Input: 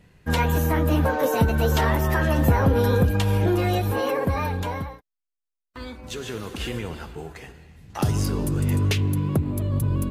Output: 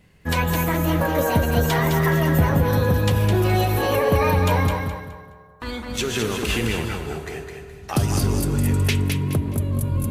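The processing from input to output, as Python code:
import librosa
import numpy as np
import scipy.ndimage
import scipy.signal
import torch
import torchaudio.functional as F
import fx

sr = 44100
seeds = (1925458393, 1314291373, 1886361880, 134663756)

y = fx.doppler_pass(x, sr, speed_mps=14, closest_m=15.0, pass_at_s=4.61)
y = fx.peak_eq(y, sr, hz=2200.0, db=2.5, octaves=0.77)
y = fx.rider(y, sr, range_db=4, speed_s=0.5)
y = fx.high_shelf(y, sr, hz=6900.0, db=5.5)
y = fx.echo_feedback(y, sr, ms=210, feedback_pct=29, wet_db=-5.5)
y = fx.rev_fdn(y, sr, rt60_s=2.5, lf_ratio=0.8, hf_ratio=0.25, size_ms=14.0, drr_db=13.0)
y = y * librosa.db_to_amplitude(8.0)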